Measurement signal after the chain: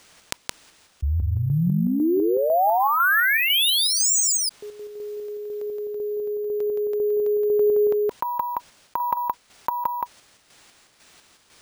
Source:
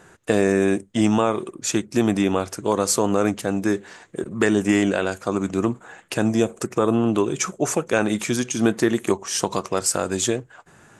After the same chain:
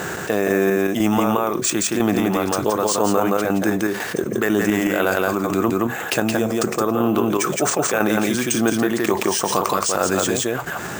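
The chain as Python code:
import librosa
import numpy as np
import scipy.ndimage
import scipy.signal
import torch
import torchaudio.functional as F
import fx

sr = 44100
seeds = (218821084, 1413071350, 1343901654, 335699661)

p1 = fx.highpass(x, sr, hz=120.0, slope=6)
p2 = fx.notch(p1, sr, hz=970.0, q=17.0)
p3 = fx.dynamic_eq(p2, sr, hz=1100.0, q=0.71, threshold_db=-35.0, ratio=4.0, max_db=6)
p4 = fx.chopper(p3, sr, hz=2.0, depth_pct=60, duty_pct=40)
p5 = p4 + fx.echo_single(p4, sr, ms=170, db=-4.0, dry=0)
p6 = np.repeat(p5[::3], 3)[:len(p5)]
p7 = fx.env_flatten(p6, sr, amount_pct=70)
y = p7 * 10.0 ** (-2.5 / 20.0)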